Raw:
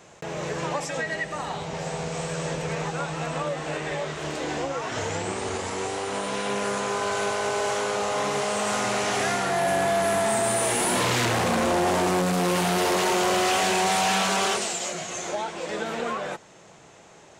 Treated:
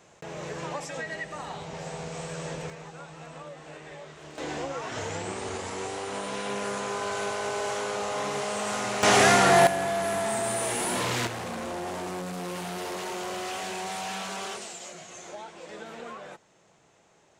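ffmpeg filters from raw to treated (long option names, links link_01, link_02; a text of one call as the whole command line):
ffmpeg -i in.wav -af "asetnsamples=nb_out_samples=441:pad=0,asendcmd='2.7 volume volume -14dB;4.38 volume volume -4.5dB;9.03 volume volume 6.5dB;9.67 volume volume -5dB;11.27 volume volume -11.5dB',volume=-6dB" out.wav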